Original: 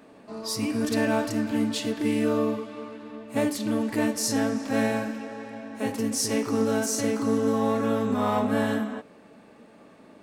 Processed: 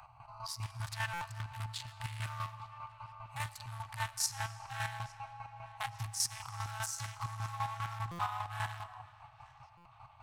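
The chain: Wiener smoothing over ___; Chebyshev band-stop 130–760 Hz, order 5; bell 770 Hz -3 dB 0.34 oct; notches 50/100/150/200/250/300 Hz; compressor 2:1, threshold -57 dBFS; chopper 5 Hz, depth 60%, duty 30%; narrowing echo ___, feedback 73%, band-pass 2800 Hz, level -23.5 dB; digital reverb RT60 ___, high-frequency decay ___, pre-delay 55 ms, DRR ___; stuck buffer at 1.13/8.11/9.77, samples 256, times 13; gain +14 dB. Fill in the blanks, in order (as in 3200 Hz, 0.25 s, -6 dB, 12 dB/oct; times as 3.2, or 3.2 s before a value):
25 samples, 0.858 s, 2.5 s, 0.85×, 16 dB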